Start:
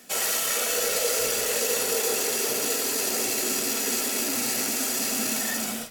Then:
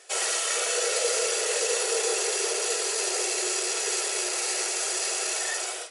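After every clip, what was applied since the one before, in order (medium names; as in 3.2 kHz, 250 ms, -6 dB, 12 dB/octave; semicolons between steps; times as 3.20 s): FFT band-pass 330–11000 Hz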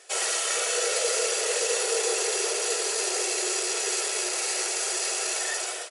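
echo from a far wall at 48 m, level -12 dB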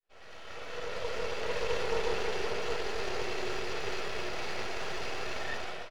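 fade-in on the opening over 1.76 s; half-wave rectifier; distance through air 280 m; trim +2.5 dB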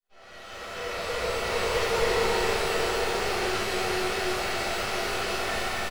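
on a send: loudspeakers at several distances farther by 79 m -11 dB, 93 m -3 dB; on the sum: pitch-shifted reverb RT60 1.1 s, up +12 st, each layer -8 dB, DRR -10.5 dB; trim -5.5 dB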